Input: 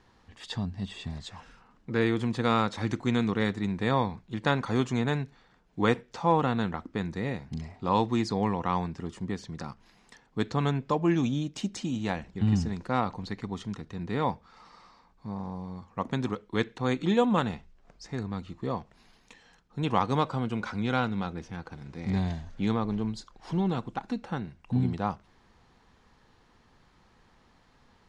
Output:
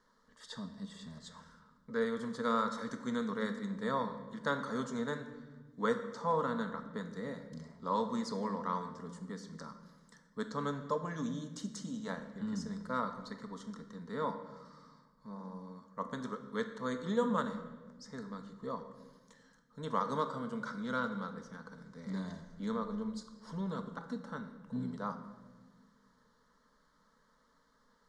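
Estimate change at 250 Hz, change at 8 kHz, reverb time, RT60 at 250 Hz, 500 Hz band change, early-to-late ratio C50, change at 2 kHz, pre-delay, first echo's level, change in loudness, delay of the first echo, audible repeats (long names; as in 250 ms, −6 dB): −9.0 dB, −5.0 dB, 1.4 s, 2.2 s, −6.5 dB, 9.5 dB, −7.5 dB, 3 ms, no echo audible, −8.5 dB, no echo audible, no echo audible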